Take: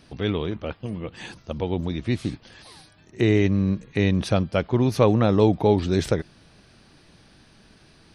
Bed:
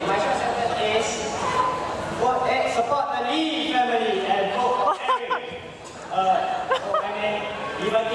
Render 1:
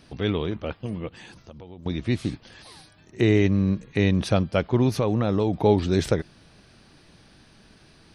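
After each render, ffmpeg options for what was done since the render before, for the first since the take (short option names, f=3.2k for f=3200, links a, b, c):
-filter_complex "[0:a]asettb=1/sr,asplit=3[a][b][c];[a]atrim=end=1.084[d];[b]atrim=start=1.08:end=1.86,asetpts=PTS-STARTPTS,afade=t=in:d=0.004:c=qsin,afade=t=out:st=0.776:d=0.004:c=qsin,acompressor=threshold=-42dB:ratio=4:attack=3.2:release=140:knee=1:detection=peak[e];[c]atrim=start=1.856[f];[d][e]acrossfade=d=0.004:c1=hsin:c2=qsin[g];[g][f]acrossfade=d=0.004:c1=qsin:c2=hsin,asettb=1/sr,asplit=3[h][i][j];[h]atrim=end=4.924[k];[i]atrim=start=4.92:end=5.54,asetpts=PTS-STARTPTS,afade=t=in:d=0.004:c=qsin,afade=t=out:st=0.616:d=0.004:c=qsin,acompressor=threshold=-18dB:ratio=6:attack=3.2:release=140:knee=1:detection=peak[l];[j]atrim=start=5.536[m];[k][l]acrossfade=d=0.004:c1=hsin:c2=qsin[n];[n][m]acrossfade=d=0.004:c1=qsin:c2=hsin"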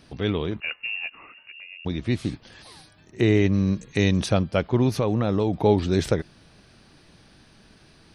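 -filter_complex "[0:a]asettb=1/sr,asplit=3[a][b][c];[a]atrim=end=0.604[d];[b]atrim=start=0.6:end=1.85,asetpts=PTS-STARTPTS,afade=t=in:d=0.004:c=qsin,afade=t=out:st=1.246:d=0.004:c=qsin,lowpass=f=2.5k:t=q:w=0.5098,lowpass=f=2.5k:t=q:w=0.6013,lowpass=f=2.5k:t=q:w=0.9,lowpass=f=2.5k:t=q:w=2.563,afreqshift=-2900[e];[c]atrim=start=1.846[f];[d][e]acrossfade=d=0.004:c1=hsin:c2=qsin[g];[g][f]acrossfade=d=0.004:c1=qsin:c2=hsin,asettb=1/sr,asplit=3[h][i][j];[h]atrim=end=3.534[k];[i]atrim=start=3.53:end=4.26,asetpts=PTS-STARTPTS,afade=t=in:d=0.004:c=qsin,afade=t=out:st=0.726:d=0.004:c=qsin,equalizer=f=7.2k:t=o:w=1.2:g=13[l];[j]atrim=start=4.256[m];[k][l]acrossfade=d=0.004:c1=hsin:c2=qsin[n];[n][m]acrossfade=d=0.004:c1=qsin:c2=hsin"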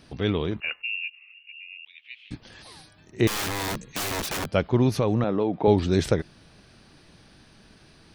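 -filter_complex "[0:a]asettb=1/sr,asplit=3[a][b][c];[a]atrim=end=0.824[d];[b]atrim=start=0.82:end=2.31,asetpts=PTS-STARTPTS,afade=t=in:d=0.004:c=qsin,afade=t=out:st=1.486:d=0.004:c=qsin,asuperpass=centerf=2700:order=4:qfactor=3.2[e];[c]atrim=start=2.306[f];[d][e]acrossfade=d=0.004:c1=hsin:c2=qsin[g];[g][f]acrossfade=d=0.004:c1=qsin:c2=hsin,asettb=1/sr,asplit=3[h][i][j];[h]atrim=end=3.274[k];[i]atrim=start=3.27:end=4.54,asetpts=PTS-STARTPTS,afade=t=in:d=0.004:c=qsin,afade=t=out:st=1.266:d=0.004:c=qsin,aeval=exprs='(mod(15.8*val(0)+1,2)-1)/15.8':c=same[l];[j]atrim=start=4.536[m];[k][l]acrossfade=d=0.004:c1=hsin:c2=qsin[n];[n][m]acrossfade=d=0.004:c1=qsin:c2=hsin,asettb=1/sr,asplit=3[o][p][q];[o]atrim=end=5.244[r];[p]atrim=start=5.24:end=5.68,asetpts=PTS-STARTPTS,afade=t=in:d=0.004:c=qsin,afade=t=out:st=0.436:d=0.004:c=qsin,highpass=200,lowpass=2.6k[s];[q]atrim=start=5.676[t];[r][s]acrossfade=d=0.004:c1=hsin:c2=qsin[u];[u][t]acrossfade=d=0.004:c1=qsin:c2=hsin"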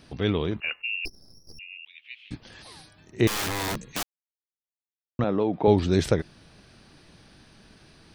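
-filter_complex "[0:a]asettb=1/sr,asplit=3[a][b][c];[a]atrim=end=1.054[d];[b]atrim=start=1.05:end=1.59,asetpts=PTS-STARTPTS,afade=t=in:d=0.004:c=qsin,afade=t=out:st=0.536:d=0.004:c=qsin,aeval=exprs='abs(val(0))':c=same[e];[c]atrim=start=1.586[f];[d][e]acrossfade=d=0.004:c1=hsin:c2=qsin[g];[g][f]acrossfade=d=0.004:c1=qsin:c2=hsin,asplit=3[h][i][j];[h]atrim=end=4.03,asetpts=PTS-STARTPTS,afade=t=out:st=4.026:d=0.004:c=hsin[k];[i]atrim=start=4.03:end=5.19,asetpts=PTS-STARTPTS,volume=0[l];[j]atrim=start=5.19,asetpts=PTS-STARTPTS,afade=t=in:d=0.004:c=hsin[m];[k][l][m]concat=n=3:v=0:a=1"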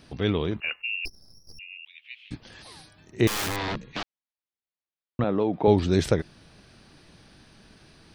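-filter_complex "[0:a]asettb=1/sr,asplit=3[a][b][c];[a]atrim=end=0.764[d];[b]atrim=start=0.76:end=2.32,asetpts=PTS-STARTPTS,afade=t=in:d=0.004:c=qsin,afade=t=out:st=1.556:d=0.004:c=qsin,equalizer=f=330:w=0.68:g=-5.5[e];[c]atrim=start=2.316[f];[d][e]acrossfade=d=0.004:c1=hsin:c2=qsin[g];[g][f]acrossfade=d=0.004:c1=qsin:c2=hsin,asettb=1/sr,asplit=3[h][i][j];[h]atrim=end=3.564[k];[i]atrim=start=3.56:end=5.36,asetpts=PTS-STARTPTS,afade=t=in:d=0.004:c=qsin,afade=t=out:st=1.796:d=0.004:c=qsin,lowpass=f=4.4k:w=0.5412,lowpass=f=4.4k:w=1.3066[l];[j]atrim=start=5.356[m];[k][l]acrossfade=d=0.004:c1=hsin:c2=qsin[n];[n][m]acrossfade=d=0.004:c1=qsin:c2=hsin"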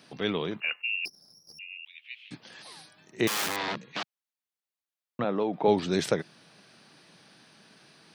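-af "highpass=f=160:w=0.5412,highpass=f=160:w=1.3066,equalizer=f=280:w=0.91:g=-5.5"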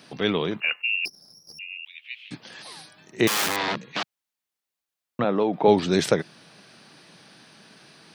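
-af "volume=5.5dB"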